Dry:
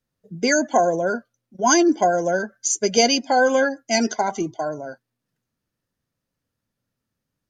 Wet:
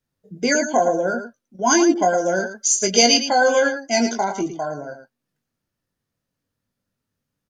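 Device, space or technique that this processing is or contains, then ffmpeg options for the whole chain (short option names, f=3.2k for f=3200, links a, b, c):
slapback doubling: -filter_complex "[0:a]asplit=3[a][b][c];[b]adelay=21,volume=-5.5dB[d];[c]adelay=111,volume=-9dB[e];[a][d][e]amix=inputs=3:normalize=0,asettb=1/sr,asplit=3[f][g][h];[f]atrim=end=1.944[i];[g]atrim=start=1.94:end=3.87,asetpts=PTS-STARTPTS,afade=t=in:d=0.004:c=qsin,afade=t=out:st=1.926:d=0.004:c=qsin,adynamicequalizer=threshold=0.0282:dfrequency=2000:dqfactor=0.7:tfrequency=2000:tqfactor=0.7:attack=5:release=100:ratio=0.375:range=2.5:mode=boostabove:tftype=highshelf[j];[h]atrim=start=3.866[k];[i][j]acrossfade=d=0.004:c1=hsin:c2=qsin[l];[l][k]acrossfade=d=0.004:c1=qsin:c2=hsin,volume=-1dB"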